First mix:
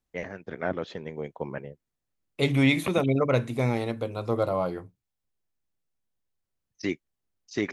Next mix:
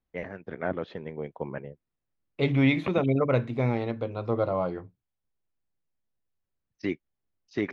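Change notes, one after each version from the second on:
master: add high-frequency loss of the air 230 metres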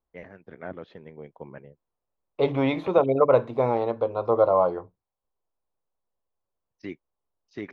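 first voice −7.0 dB
second voice: add octave-band graphic EQ 125/250/500/1,000/2,000/8,000 Hz −6/−4/+7/+11/−8/−5 dB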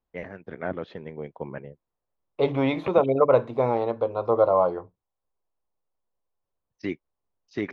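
first voice +6.5 dB

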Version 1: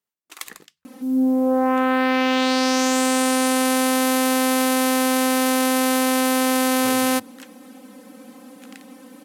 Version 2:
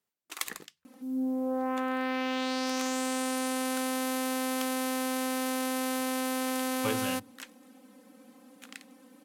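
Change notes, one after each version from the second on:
speech +3.5 dB
second sound −12.0 dB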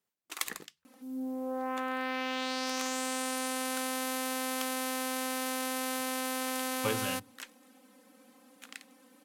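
second sound: add low-shelf EQ 490 Hz −8 dB

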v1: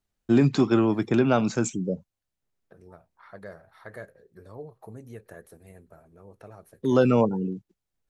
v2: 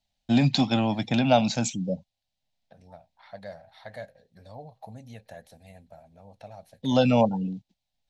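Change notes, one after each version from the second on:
master: add drawn EQ curve 260 Hz 0 dB, 380 Hz −18 dB, 560 Hz +3 dB, 790 Hz +8 dB, 1,200 Hz −10 dB, 2,000 Hz +2 dB, 3,900 Hz +12 dB, 10,000 Hz −5 dB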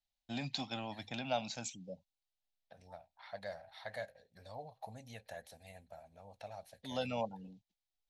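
first voice −12.0 dB
master: add parametric band 180 Hz −10 dB 2.8 octaves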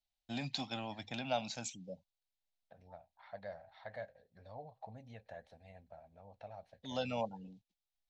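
second voice: add head-to-tape spacing loss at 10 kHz 28 dB

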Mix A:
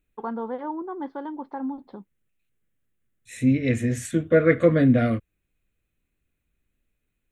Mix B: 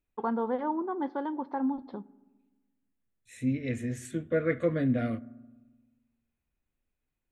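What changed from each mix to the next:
second voice −10.5 dB
reverb: on, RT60 1.2 s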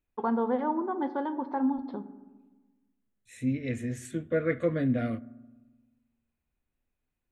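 first voice: send +11.0 dB

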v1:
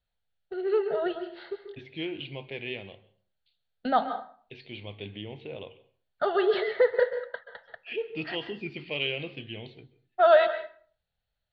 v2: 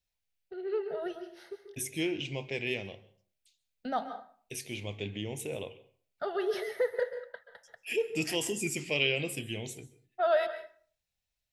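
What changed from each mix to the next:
first voice −9.5 dB
master: remove Chebyshev low-pass with heavy ripple 4,500 Hz, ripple 3 dB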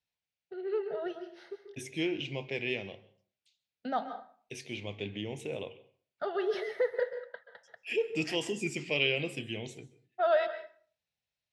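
master: add band-pass filter 110–4,900 Hz

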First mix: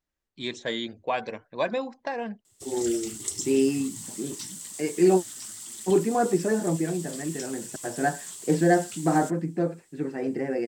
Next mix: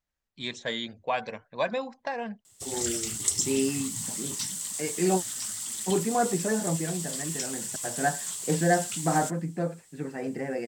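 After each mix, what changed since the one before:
background +5.5 dB
master: add parametric band 340 Hz −8.5 dB 0.68 octaves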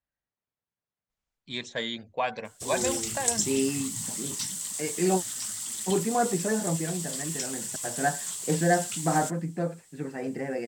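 first voice: entry +1.10 s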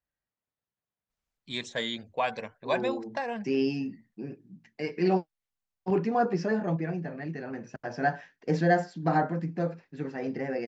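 background: muted

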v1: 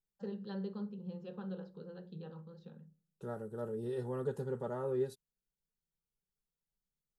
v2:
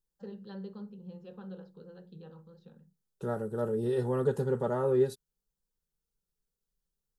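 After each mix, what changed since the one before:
second voice +8.5 dB
reverb: off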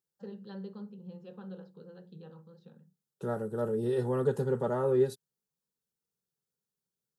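second voice: add high-pass filter 93 Hz 24 dB per octave

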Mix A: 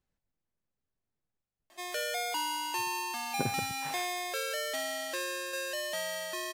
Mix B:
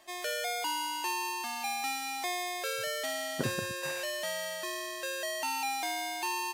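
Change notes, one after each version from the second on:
background: entry −1.70 s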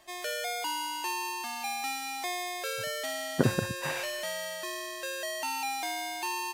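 speech +9.0 dB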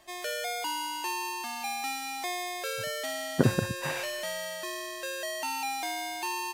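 master: add low-shelf EQ 340 Hz +3 dB

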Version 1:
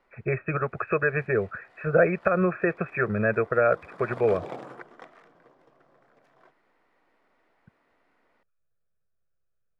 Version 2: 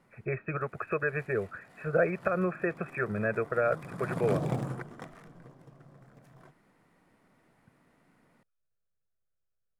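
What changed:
speech −6.0 dB
background: remove three-way crossover with the lows and the highs turned down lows −23 dB, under 310 Hz, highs −17 dB, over 5,300 Hz

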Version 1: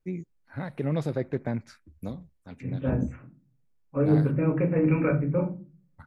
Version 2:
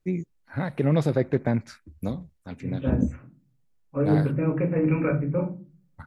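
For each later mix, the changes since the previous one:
first voice +6.0 dB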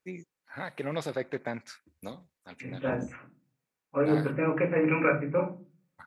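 second voice +8.5 dB
master: add high-pass filter 1,100 Hz 6 dB per octave

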